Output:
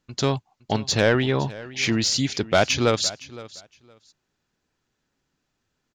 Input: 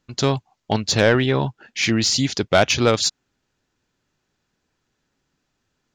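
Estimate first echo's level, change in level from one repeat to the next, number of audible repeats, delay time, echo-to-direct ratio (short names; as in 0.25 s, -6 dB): -18.5 dB, -15.0 dB, 2, 0.514 s, -18.5 dB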